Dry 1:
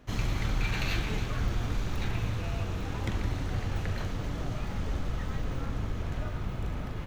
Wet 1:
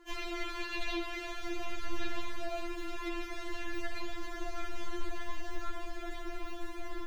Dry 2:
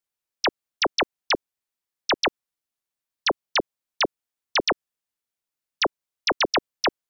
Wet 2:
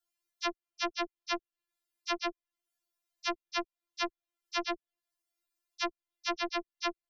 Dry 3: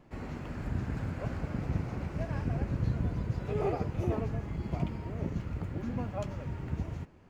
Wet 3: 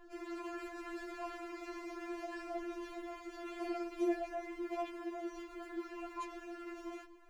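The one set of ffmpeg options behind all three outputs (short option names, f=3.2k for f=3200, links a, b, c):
-filter_complex "[0:a]acrossover=split=82|950|2100|4300[a][b][c][d][e];[a]acompressor=threshold=-34dB:ratio=4[f];[b]acompressor=threshold=-35dB:ratio=4[g];[c]acompressor=threshold=-43dB:ratio=4[h];[d]acompressor=threshold=-41dB:ratio=4[i];[e]acompressor=threshold=-58dB:ratio=4[j];[f][g][h][i][j]amix=inputs=5:normalize=0,aeval=exprs='0.0891*(cos(1*acos(clip(val(0)/0.0891,-1,1)))-cos(1*PI/2))+0.000562*(cos(5*acos(clip(val(0)/0.0891,-1,1)))-cos(5*PI/2))':c=same,afftfilt=real='re*4*eq(mod(b,16),0)':imag='im*4*eq(mod(b,16),0)':win_size=2048:overlap=0.75,volume=2.5dB"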